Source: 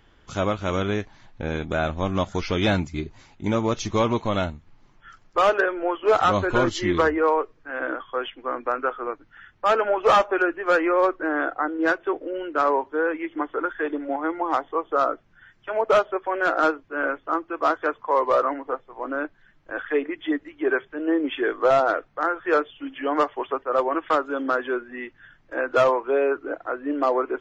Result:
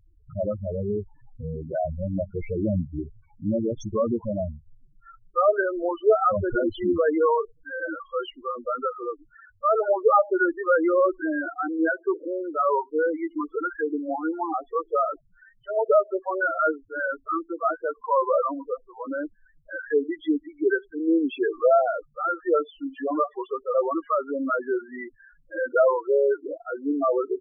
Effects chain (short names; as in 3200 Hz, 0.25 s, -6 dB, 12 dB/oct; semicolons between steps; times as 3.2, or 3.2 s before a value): loudest bins only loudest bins 4; gain +1.5 dB